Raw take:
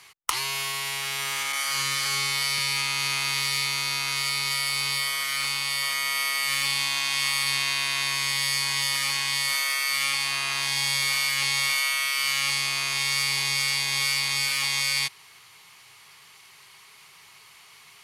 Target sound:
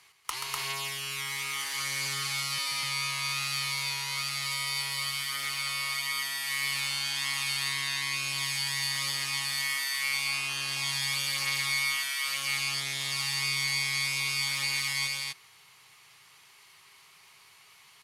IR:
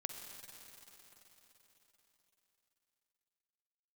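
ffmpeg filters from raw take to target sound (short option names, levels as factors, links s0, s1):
-af "aecho=1:1:131.2|247.8:0.501|0.891,volume=0.376"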